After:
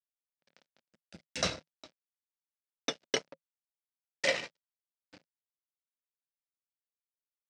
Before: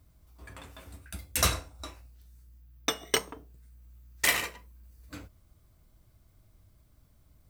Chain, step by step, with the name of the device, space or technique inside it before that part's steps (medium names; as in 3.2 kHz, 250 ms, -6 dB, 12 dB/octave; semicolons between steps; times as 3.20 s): blown loudspeaker (crossover distortion -39.5 dBFS; cabinet simulation 150–5900 Hz, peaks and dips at 160 Hz +8 dB, 230 Hz +4 dB, 560 Hz +7 dB, 1.1 kHz -8 dB, 5 kHz +4 dB); 3.32–4.35 s: peaking EQ 540 Hz +13 dB 0.24 oct; trim -3.5 dB